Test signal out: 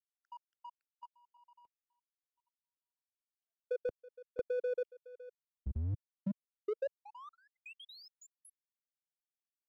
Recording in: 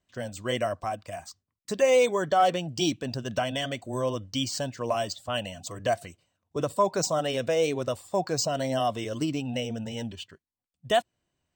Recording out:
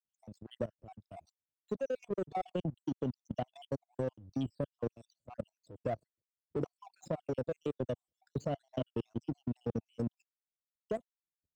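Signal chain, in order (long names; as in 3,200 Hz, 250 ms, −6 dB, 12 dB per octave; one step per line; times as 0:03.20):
time-frequency cells dropped at random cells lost 66%
drawn EQ curve 450 Hz 0 dB, 2,000 Hz −29 dB, 2,800 Hz −14 dB, 11,000 Hz −19 dB
power curve on the samples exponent 1.4
output level in coarse steps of 21 dB
high-shelf EQ 8,700 Hz −4 dB
multiband upward and downward compressor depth 40%
level +9.5 dB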